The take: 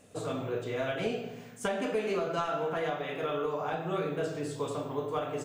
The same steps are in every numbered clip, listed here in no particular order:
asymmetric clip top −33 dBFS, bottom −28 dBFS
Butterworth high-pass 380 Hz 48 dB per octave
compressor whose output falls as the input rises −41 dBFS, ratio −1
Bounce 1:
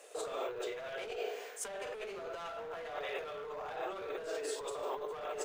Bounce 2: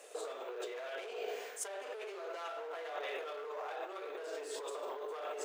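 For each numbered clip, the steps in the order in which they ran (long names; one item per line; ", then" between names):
Butterworth high-pass, then asymmetric clip, then compressor whose output falls as the input rises
asymmetric clip, then compressor whose output falls as the input rises, then Butterworth high-pass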